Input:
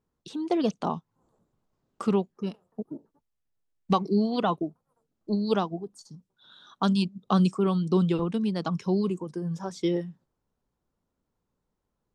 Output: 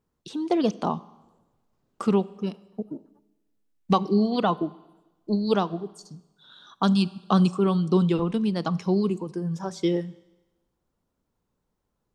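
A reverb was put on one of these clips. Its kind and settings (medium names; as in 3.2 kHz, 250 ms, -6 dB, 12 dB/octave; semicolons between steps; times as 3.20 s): Schroeder reverb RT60 1.1 s, combs from 30 ms, DRR 19 dB; trim +2.5 dB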